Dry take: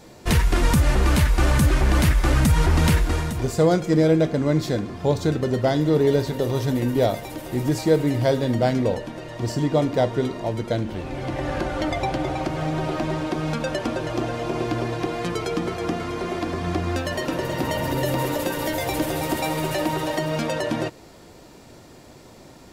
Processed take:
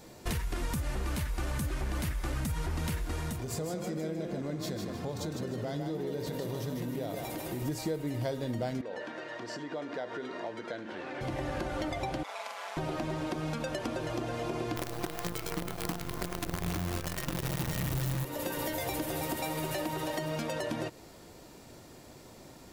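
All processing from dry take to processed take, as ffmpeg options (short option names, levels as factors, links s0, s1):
-filter_complex "[0:a]asettb=1/sr,asplit=3[s0][s1][s2];[s0]atrim=end=3.354[s3];[s1]atrim=start=3.35:end=7.62,asetpts=PTS-STARTPTS,afade=t=in:d=0.004:c=qsin,afade=t=out:st=4.266:d=0.004:c=qsin,highpass=53,acompressor=threshold=0.0447:ratio=5:attack=3.2:release=140:knee=1:detection=peak,asplit=5[s4][s5][s6][s7][s8];[s5]adelay=154,afreqshift=33,volume=0.531[s9];[s6]adelay=308,afreqshift=66,volume=0.197[s10];[s7]adelay=462,afreqshift=99,volume=0.0724[s11];[s8]adelay=616,afreqshift=132,volume=0.0269[s12];[s4][s9][s10][s11][s12]amix=inputs=5:normalize=0,atrim=end_sample=188307[s13];[s2]atrim=start=7.616[s14];[s3][s13]acrossfade=d=0.004:c1=hsin:c2=qsin[s15];[s15][s14]acrossfade=d=0.004:c1=qsin:c2=hsin,asettb=1/sr,asplit=3[s16][s17][s18];[s16]atrim=end=8.814[s19];[s17]atrim=start=8.81:end=11.21,asetpts=PTS-STARTPTS,afade=t=in:d=0.004:c=qsin,afade=t=out:st=2.396:d=0.004:c=qsin,equalizer=f=1600:t=o:w=0.56:g=9,acompressor=threshold=0.0501:ratio=6:attack=3.2:release=140:knee=1:detection=peak,highpass=310,lowpass=5000[s20];[s18]atrim=start=11.206[s21];[s19][s20]acrossfade=d=0.004:c1=hsin:c2=qsin[s22];[s22][s21]acrossfade=d=0.004:c1=qsin:c2=hsin,asettb=1/sr,asplit=3[s23][s24][s25];[s23]atrim=end=12.234[s26];[s24]atrim=start=12.23:end=12.77,asetpts=PTS-STARTPTS,afade=t=in:d=0.004:c=qsin,afade=t=out:st=0.536:d=0.004:c=qsin,highpass=f=810:w=0.5412,highpass=f=810:w=1.3066,aeval=exprs='val(0)*sin(2*PI*99*n/s)':c=same,asplit=2[s27][s28];[s28]adelay=44,volume=0.708[s29];[s27][s29]amix=inputs=2:normalize=0,atrim=end_sample=23814[s30];[s25]atrim=start=12.766[s31];[s26][s30]acrossfade=d=0.004:c1=hsin:c2=qsin[s32];[s32][s31]acrossfade=d=0.004:c1=qsin:c2=hsin,asettb=1/sr,asplit=3[s33][s34][s35];[s33]atrim=end=14.764[s36];[s34]atrim=start=14.76:end=18.25,asetpts=PTS-STARTPTS,afade=t=in:d=0.004:c=qsin,afade=t=out:st=3.486:d=0.004:c=qsin,aecho=1:1:5.9:0.54,atrim=end_sample=153909,asubboost=boost=9.5:cutoff=160,acrusher=bits=4:dc=4:mix=0:aa=0.000001[s37];[s35]atrim=start=18.246[s38];[s36][s37]acrossfade=d=0.004:c1=hsin:c2=qsin[s39];[s39][s38]acrossfade=d=0.004:c1=qsin:c2=hsin,highshelf=f=10000:g=8,acompressor=threshold=0.0562:ratio=6,volume=0.531"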